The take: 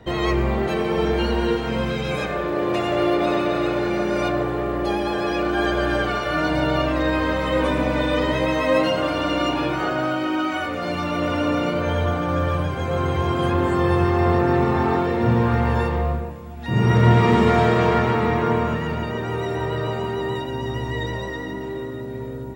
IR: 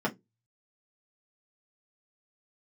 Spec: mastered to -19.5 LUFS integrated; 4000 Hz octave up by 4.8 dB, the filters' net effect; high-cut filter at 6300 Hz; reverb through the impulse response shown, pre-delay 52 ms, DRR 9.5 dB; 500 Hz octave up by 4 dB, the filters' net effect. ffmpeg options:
-filter_complex "[0:a]lowpass=6.3k,equalizer=f=500:t=o:g=5,equalizer=f=4k:t=o:g=7,asplit=2[a][b];[1:a]atrim=start_sample=2205,adelay=52[c];[b][c]afir=irnorm=-1:irlink=0,volume=-18.5dB[d];[a][d]amix=inputs=2:normalize=0,volume=-1.5dB"

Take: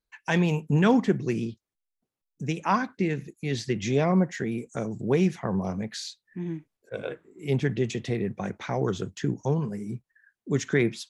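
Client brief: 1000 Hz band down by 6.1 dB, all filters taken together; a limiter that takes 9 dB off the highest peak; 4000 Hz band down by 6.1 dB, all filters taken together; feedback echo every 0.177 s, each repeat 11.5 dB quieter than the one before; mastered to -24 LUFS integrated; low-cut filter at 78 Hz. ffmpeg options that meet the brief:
-af "highpass=78,equalizer=f=1k:t=o:g=-7.5,equalizer=f=4k:t=o:g=-7.5,alimiter=limit=-20dB:level=0:latency=1,aecho=1:1:177|354|531:0.266|0.0718|0.0194,volume=7.5dB"

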